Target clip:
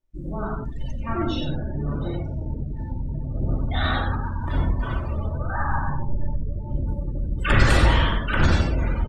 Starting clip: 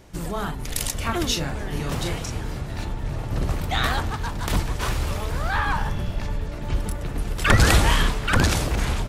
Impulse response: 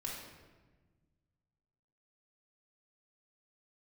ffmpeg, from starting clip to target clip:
-filter_complex "[0:a]asettb=1/sr,asplit=3[s0][s1][s2];[s0]atrim=end=0.734[s3];[s1]atrim=start=0.73:end=2.61,asetpts=PTS-STARTPTS,afade=t=in:d=0.004:c=qsin,afade=t=out:st=1.876:d=0.004:c=qsin,aemphasis=mode=reproduction:type=50fm[s4];[s2]atrim=start=2.606[s5];[s3][s4]acrossfade=d=0.004:c1=hsin:c2=qsin[s6];[s6][s5]acrossfade=d=0.004:c1=qsin:c2=hsin,asettb=1/sr,asplit=3[s7][s8][s9];[s7]atrim=end=5.274[s10];[s8]atrim=start=5.27:end=5.84,asetpts=PTS-STARTPTS,afade=t=in:d=0.004:c=qsin,afade=t=out:st=0.566:d=0.004:c=qsin,lowpass=1700[s11];[s9]atrim=start=5.836[s12];[s10][s11]acrossfade=d=0.004:c1=hsin:c2=qsin[s13];[s13][s12]acrossfade=d=0.004:c1=qsin:c2=hsin,aecho=1:1:93:0.562[s14];[1:a]atrim=start_sample=2205,afade=t=out:st=0.25:d=0.01,atrim=end_sample=11466[s15];[s14][s15]afir=irnorm=-1:irlink=0,afftdn=nr=34:nf=-28,volume=0.841"

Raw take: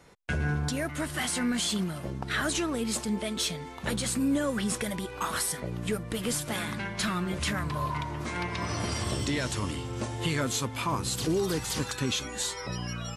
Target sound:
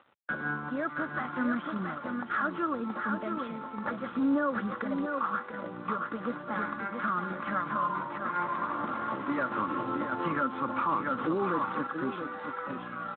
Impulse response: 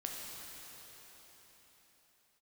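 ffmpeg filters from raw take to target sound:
-filter_complex "[0:a]lowpass=f=1300:t=q:w=5,aecho=1:1:3.6:0.41,aecho=1:1:676:0.501,asettb=1/sr,asplit=3[s0][s1][s2];[s0]atrim=end=9.384[s3];[s1]atrim=start=9.38:end=11.87,asetpts=PTS-STARTPTS,afade=t=in:d=0.004:c=qsin,afade=t=out:st=2.486:d=0.004:c=qsin,acontrast=58[s4];[s2]atrim=start=11.866[s5];[s3][s4]acrossfade=d=0.004:c1=hsin:c2=qsin[s6];[s6][s5]acrossfade=d=0.004:c1=qsin:c2=hsin,alimiter=limit=0.158:level=0:latency=1:release=207,acompressor=mode=upward:threshold=0.00447:ratio=2.5,highpass=f=160:w=0.5412,highpass=f=160:w=1.3066,aeval=exprs='sgn(val(0))*max(abs(val(0))-0.00299,0)':c=same,volume=0.631" -ar 8000 -c:a libspeex -b:a 18k

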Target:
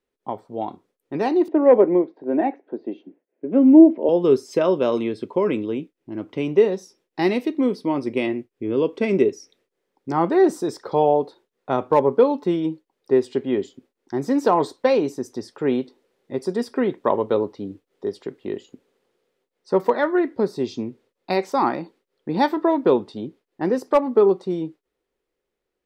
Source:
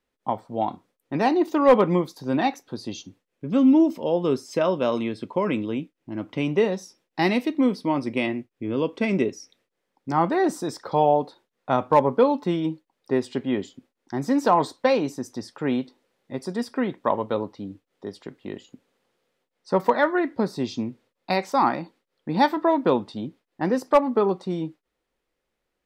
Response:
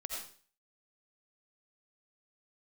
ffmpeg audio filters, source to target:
-filter_complex "[0:a]equalizer=f=400:w=2.4:g=9.5,dynaudnorm=f=290:g=9:m=3.76,asettb=1/sr,asplit=3[s0][s1][s2];[s0]atrim=end=1.484[s3];[s1]atrim=start=1.48:end=4.09,asetpts=PTS-STARTPTS,afade=t=in:d=0.004:c=qsin,afade=t=out:st=2.606:d=0.004:c=qsin,highpass=f=210:w=0.5412,highpass=f=210:w=1.3066,equalizer=f=310:t=q:w=4:g=5,equalizer=f=640:t=q:w=4:g=8,equalizer=f=1200:t=q:w=4:g=-10,lowpass=f=2100:w=0.5412,lowpass=f=2100:w=1.3066[s4];[s2]atrim=start=4.086[s5];[s3][s4]acrossfade=d=0.004:c1=hsin:c2=qsin[s6];[s6][s5]acrossfade=d=0.004:c1=qsin:c2=hsin,volume=0.596"

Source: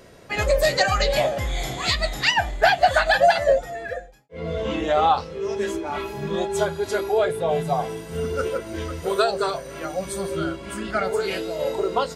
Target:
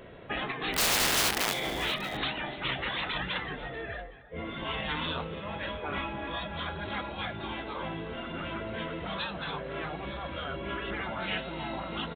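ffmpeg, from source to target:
-filter_complex "[0:a]aresample=8000,aresample=44100,asplit=3[s0][s1][s2];[s0]afade=t=out:st=0.73:d=0.02[s3];[s1]aeval=exprs='(mod(10*val(0)+1,2)-1)/10':c=same,afade=t=in:st=0.73:d=0.02,afade=t=out:st=1.52:d=0.02[s4];[s2]afade=t=in:st=1.52:d=0.02[s5];[s3][s4][s5]amix=inputs=3:normalize=0,afftfilt=real='re*lt(hypot(re,im),0.141)':imag='im*lt(hypot(re,im),0.141)':win_size=1024:overlap=0.75,asplit=2[s6][s7];[s7]aecho=0:1:286|634:0.133|0.106[s8];[s6][s8]amix=inputs=2:normalize=0"

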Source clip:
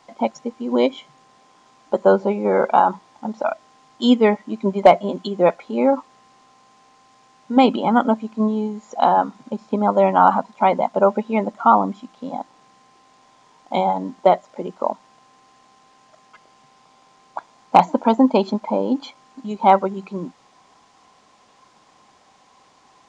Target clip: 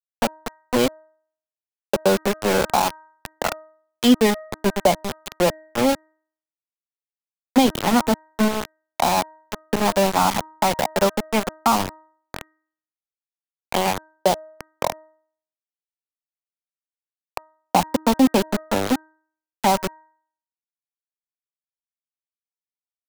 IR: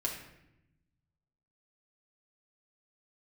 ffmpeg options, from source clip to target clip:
-filter_complex "[0:a]aeval=exprs='val(0)*gte(abs(val(0)),0.141)':c=same,bandreject=f=313.5:t=h:w=4,bandreject=f=627:t=h:w=4,bandreject=f=940.5:t=h:w=4,bandreject=f=1254:t=h:w=4,bandreject=f=1567.5:t=h:w=4,bandreject=f=1881:t=h:w=4,acrossover=split=250|3000[s0][s1][s2];[s1]acompressor=threshold=0.0891:ratio=2.5[s3];[s0][s3][s2]amix=inputs=3:normalize=0,volume=1.26"

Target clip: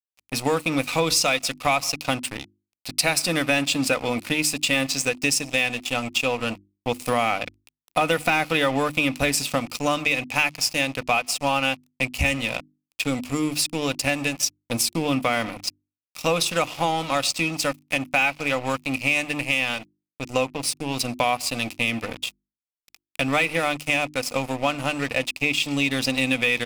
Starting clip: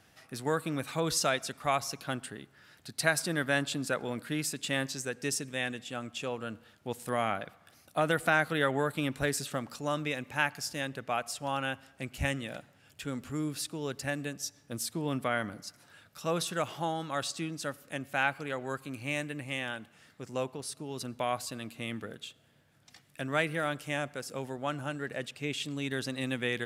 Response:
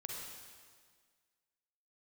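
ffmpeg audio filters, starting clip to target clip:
-filter_complex "[0:a]aecho=1:1:4:0.38,asplit=2[s0][s1];[1:a]atrim=start_sample=2205,asetrate=88200,aresample=44100[s2];[s1][s2]afir=irnorm=-1:irlink=0,volume=0.178[s3];[s0][s3]amix=inputs=2:normalize=0,acontrast=38,aeval=exprs='sgn(val(0))*max(abs(val(0))-0.0112,0)':c=same,equalizer=f=200:t=o:w=0.33:g=-7,equalizer=f=400:t=o:w=0.33:g=-8,equalizer=f=1600:t=o:w=0.33:g=-10,equalizer=f=2500:t=o:w=0.33:g=10,equalizer=f=5000:t=o:w=0.33:g=4,apsyclip=5.96,acompressor=threshold=0.158:ratio=3,bandreject=f=50:t=h:w=6,bandreject=f=100:t=h:w=6,bandreject=f=150:t=h:w=6,bandreject=f=200:t=h:w=6,bandreject=f=250:t=h:w=6,bandreject=f=300:t=h:w=6,bandreject=f=350:t=h:w=6,volume=0.631"

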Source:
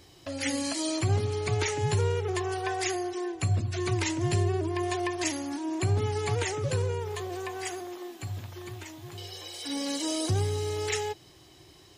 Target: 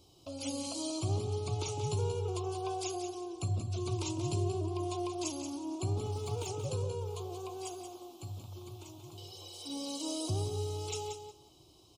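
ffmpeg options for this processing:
-filter_complex "[0:a]asettb=1/sr,asplit=3[s0][s1][s2];[s0]atrim=end=5.914[s3];[s1]atrim=start=5.91:end=6.47,asetpts=PTS-STARTPTS,afade=t=in:d=0.004:c=qsin,afade=t=out:st=0.556:d=0.004:c=qsin,aeval=exprs='sgn(val(0))*max(abs(val(0))-0.00794,0)':c=same[s4];[s2]atrim=start=6.466[s5];[s3][s4]acrossfade=d=0.004:c1=hsin:c2=qsin[s6];[s6][s5]acrossfade=d=0.004:c1=qsin:c2=hsin,asuperstop=centerf=1800:order=4:qfactor=1.1,aecho=1:1:181|362|543:0.398|0.0717|0.0129,volume=0.447"

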